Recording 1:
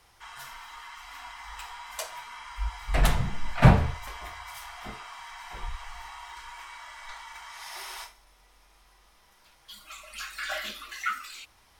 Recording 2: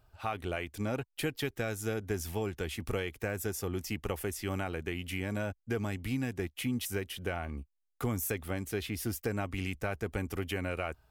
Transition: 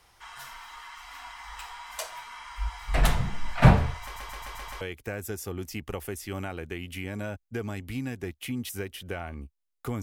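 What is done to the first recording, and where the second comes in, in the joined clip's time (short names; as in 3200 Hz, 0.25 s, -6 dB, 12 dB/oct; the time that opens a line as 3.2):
recording 1
4.03 stutter in place 0.13 s, 6 plays
4.81 switch to recording 2 from 2.97 s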